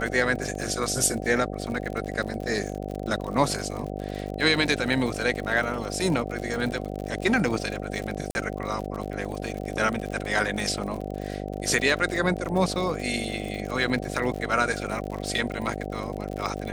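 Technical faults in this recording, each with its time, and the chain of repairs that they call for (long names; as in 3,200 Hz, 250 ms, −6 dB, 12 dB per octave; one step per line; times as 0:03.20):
mains buzz 50 Hz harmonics 15 −33 dBFS
surface crackle 57 per second −31 dBFS
0:08.31–0:08.35: drop-out 41 ms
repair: click removal
hum removal 50 Hz, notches 15
repair the gap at 0:08.31, 41 ms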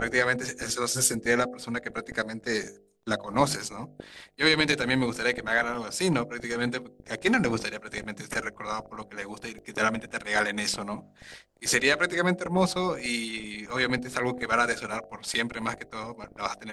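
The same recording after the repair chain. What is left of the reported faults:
none of them is left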